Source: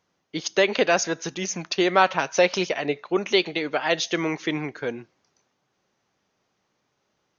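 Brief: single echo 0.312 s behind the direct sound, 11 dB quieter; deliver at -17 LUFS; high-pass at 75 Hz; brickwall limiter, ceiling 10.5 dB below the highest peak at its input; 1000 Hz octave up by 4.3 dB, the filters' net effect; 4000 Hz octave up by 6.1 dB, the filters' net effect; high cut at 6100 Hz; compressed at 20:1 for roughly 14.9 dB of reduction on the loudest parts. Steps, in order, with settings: HPF 75 Hz; LPF 6100 Hz; bell 1000 Hz +5.5 dB; bell 4000 Hz +8 dB; compressor 20:1, threshold -23 dBFS; limiter -19.5 dBFS; echo 0.312 s -11 dB; gain +14.5 dB

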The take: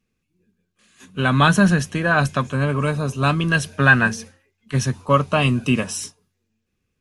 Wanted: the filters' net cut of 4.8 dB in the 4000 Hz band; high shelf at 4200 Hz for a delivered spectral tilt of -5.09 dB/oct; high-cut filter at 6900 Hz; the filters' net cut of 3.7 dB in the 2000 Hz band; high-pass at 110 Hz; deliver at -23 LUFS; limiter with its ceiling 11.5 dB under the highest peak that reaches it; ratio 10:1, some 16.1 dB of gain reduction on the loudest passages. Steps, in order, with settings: HPF 110 Hz; LPF 6900 Hz; bell 2000 Hz -5 dB; bell 4000 Hz -7 dB; high shelf 4200 Hz +5 dB; compressor 10:1, threshold -28 dBFS; gain +14 dB; limiter -13.5 dBFS

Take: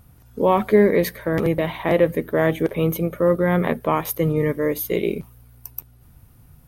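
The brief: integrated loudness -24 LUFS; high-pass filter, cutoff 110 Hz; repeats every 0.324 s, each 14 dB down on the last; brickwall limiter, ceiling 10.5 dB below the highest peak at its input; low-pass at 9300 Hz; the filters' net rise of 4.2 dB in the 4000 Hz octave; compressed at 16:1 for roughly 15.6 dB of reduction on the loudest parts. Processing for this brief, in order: HPF 110 Hz; LPF 9300 Hz; bell 4000 Hz +5.5 dB; compressor 16:1, threshold -25 dBFS; limiter -24 dBFS; feedback echo 0.324 s, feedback 20%, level -14 dB; gain +10.5 dB

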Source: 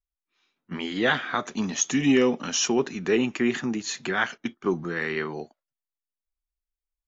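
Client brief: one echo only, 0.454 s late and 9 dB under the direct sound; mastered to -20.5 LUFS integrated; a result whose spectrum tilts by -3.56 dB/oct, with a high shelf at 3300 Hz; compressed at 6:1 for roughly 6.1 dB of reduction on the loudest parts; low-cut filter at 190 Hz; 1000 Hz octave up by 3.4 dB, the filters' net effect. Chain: HPF 190 Hz; bell 1000 Hz +5.5 dB; high shelf 3300 Hz -8.5 dB; compressor 6:1, threshold -23 dBFS; echo 0.454 s -9 dB; gain +9 dB

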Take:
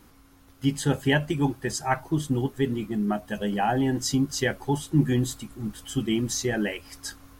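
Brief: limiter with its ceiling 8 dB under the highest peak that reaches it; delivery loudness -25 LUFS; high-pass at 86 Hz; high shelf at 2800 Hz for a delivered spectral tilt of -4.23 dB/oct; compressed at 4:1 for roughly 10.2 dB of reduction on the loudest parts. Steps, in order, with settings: HPF 86 Hz; high shelf 2800 Hz +4 dB; compressor 4:1, threshold -28 dBFS; gain +9.5 dB; limiter -14.5 dBFS

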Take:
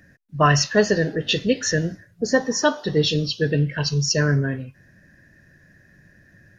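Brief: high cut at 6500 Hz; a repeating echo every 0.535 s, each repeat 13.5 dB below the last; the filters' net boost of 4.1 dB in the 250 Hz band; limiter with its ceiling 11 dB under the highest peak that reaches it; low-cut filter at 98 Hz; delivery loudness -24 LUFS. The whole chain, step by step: HPF 98 Hz; LPF 6500 Hz; bell 250 Hz +6 dB; limiter -12.5 dBFS; feedback echo 0.535 s, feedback 21%, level -13.5 dB; gain -1 dB

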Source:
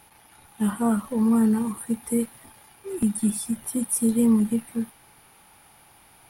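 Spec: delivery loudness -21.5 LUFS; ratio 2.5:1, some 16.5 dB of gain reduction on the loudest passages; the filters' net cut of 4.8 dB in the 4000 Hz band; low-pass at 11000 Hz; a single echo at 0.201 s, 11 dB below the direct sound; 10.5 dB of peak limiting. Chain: LPF 11000 Hz; bell 4000 Hz -6.5 dB; compressor 2.5:1, threshold -43 dBFS; limiter -36.5 dBFS; echo 0.201 s -11 dB; gain +24 dB

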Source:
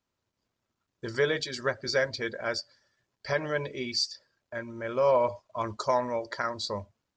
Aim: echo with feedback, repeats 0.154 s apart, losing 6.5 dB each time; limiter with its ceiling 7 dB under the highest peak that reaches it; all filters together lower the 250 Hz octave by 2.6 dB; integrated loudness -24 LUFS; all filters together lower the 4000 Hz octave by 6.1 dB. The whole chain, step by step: bell 250 Hz -3.5 dB; bell 4000 Hz -7.5 dB; limiter -22 dBFS; feedback echo 0.154 s, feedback 47%, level -6.5 dB; gain +10 dB

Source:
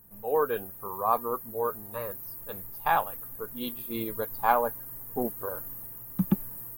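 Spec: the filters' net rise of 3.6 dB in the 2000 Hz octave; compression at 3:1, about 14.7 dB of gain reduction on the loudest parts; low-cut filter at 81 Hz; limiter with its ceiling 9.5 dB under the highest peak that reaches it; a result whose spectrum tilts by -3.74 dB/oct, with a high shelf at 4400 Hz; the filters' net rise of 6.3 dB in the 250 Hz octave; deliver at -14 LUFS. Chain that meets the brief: HPF 81 Hz; bell 250 Hz +8.5 dB; bell 2000 Hz +5.5 dB; high shelf 4400 Hz -4 dB; compressor 3:1, threshold -33 dBFS; gain +25.5 dB; limiter -1.5 dBFS

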